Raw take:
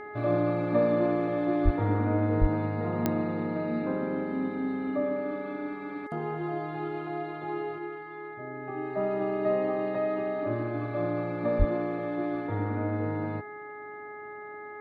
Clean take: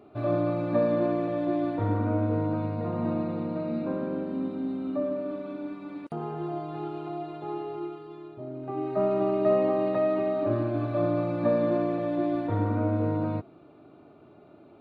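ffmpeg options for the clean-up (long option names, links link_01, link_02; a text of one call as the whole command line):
ffmpeg -i in.wav -filter_complex "[0:a]adeclick=threshold=4,bandreject=frequency=419.3:width_type=h:width=4,bandreject=frequency=838.6:width_type=h:width=4,bandreject=frequency=1257.9:width_type=h:width=4,bandreject=frequency=1677.2:width_type=h:width=4,bandreject=frequency=2096.5:width_type=h:width=4,asplit=3[link_01][link_02][link_03];[link_01]afade=type=out:start_time=1.64:duration=0.02[link_04];[link_02]highpass=frequency=140:width=0.5412,highpass=frequency=140:width=1.3066,afade=type=in:start_time=1.64:duration=0.02,afade=type=out:start_time=1.76:duration=0.02[link_05];[link_03]afade=type=in:start_time=1.76:duration=0.02[link_06];[link_04][link_05][link_06]amix=inputs=3:normalize=0,asplit=3[link_07][link_08][link_09];[link_07]afade=type=out:start_time=2.4:duration=0.02[link_10];[link_08]highpass=frequency=140:width=0.5412,highpass=frequency=140:width=1.3066,afade=type=in:start_time=2.4:duration=0.02,afade=type=out:start_time=2.52:duration=0.02[link_11];[link_09]afade=type=in:start_time=2.52:duration=0.02[link_12];[link_10][link_11][link_12]amix=inputs=3:normalize=0,asplit=3[link_13][link_14][link_15];[link_13]afade=type=out:start_time=11.58:duration=0.02[link_16];[link_14]highpass=frequency=140:width=0.5412,highpass=frequency=140:width=1.3066,afade=type=in:start_time=11.58:duration=0.02,afade=type=out:start_time=11.7:duration=0.02[link_17];[link_15]afade=type=in:start_time=11.7:duration=0.02[link_18];[link_16][link_17][link_18]amix=inputs=3:normalize=0,asetnsamples=nb_out_samples=441:pad=0,asendcmd='7.78 volume volume 4dB',volume=0dB" out.wav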